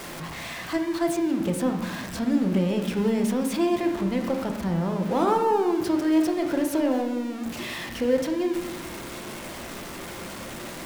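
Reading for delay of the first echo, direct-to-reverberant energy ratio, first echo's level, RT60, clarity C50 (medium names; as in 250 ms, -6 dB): no echo, 3.5 dB, no echo, 1.2 s, 6.5 dB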